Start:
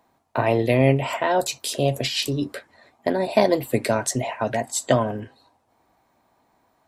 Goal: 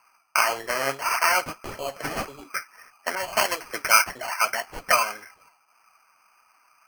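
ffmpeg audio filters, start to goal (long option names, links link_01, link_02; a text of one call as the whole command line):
ffmpeg -i in.wav -filter_complex "[0:a]highpass=frequency=1300:width_type=q:width=10,aemphasis=mode=reproduction:type=riaa,acrusher=samples=12:mix=1:aa=0.000001,flanger=delay=0.7:depth=6.8:regen=50:speed=1.7:shape=triangular,asettb=1/sr,asplit=3[link_01][link_02][link_03];[link_01]atrim=end=3.154[link_04];[link_02]atrim=start=3.15:end=4.04,asetpts=PTS-STARTPTS,afade=type=in:duration=0.004:curve=qsin,afade=type=out:start_time=0.886:duration=0.004:curve=qsin,adynamicequalizer=threshold=0.0178:dfrequency=2100:dqfactor=0.7:tfrequency=2100:tqfactor=0.7:attack=5:release=100:ratio=0.375:range=2.5:mode=boostabove:tftype=highshelf[link_05];[link_03]atrim=start=4.036[link_06];[link_04][link_05]acrossfade=duration=0.004:curve1=hsin:curve2=qsin[link_07];[link_07][link_06]acrossfade=duration=0.004:curve1=qsin:curve2=hsin,volume=4.5dB" out.wav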